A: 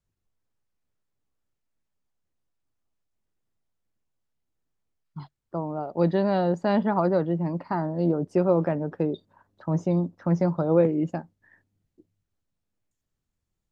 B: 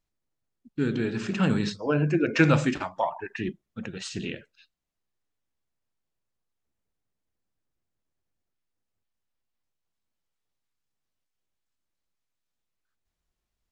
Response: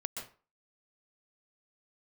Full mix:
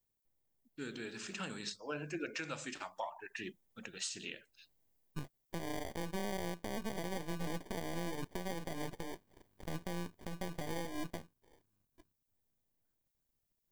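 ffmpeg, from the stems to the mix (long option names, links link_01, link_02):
-filter_complex "[0:a]acompressor=threshold=-28dB:ratio=6,acrusher=samples=33:mix=1:aa=0.000001,aeval=exprs='max(val(0),0)':channel_layout=same,volume=-3.5dB[link_01];[1:a]aemphasis=mode=production:type=riaa,volume=-12.5dB[link_02];[link_01][link_02]amix=inputs=2:normalize=0,dynaudnorm=framelen=200:gausssize=31:maxgain=5dB,alimiter=level_in=4.5dB:limit=-24dB:level=0:latency=1:release=439,volume=-4.5dB"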